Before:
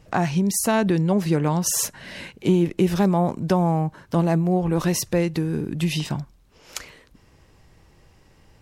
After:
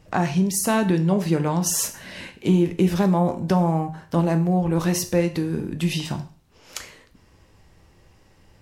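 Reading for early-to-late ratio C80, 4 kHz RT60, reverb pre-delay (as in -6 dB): 17.5 dB, 0.45 s, 8 ms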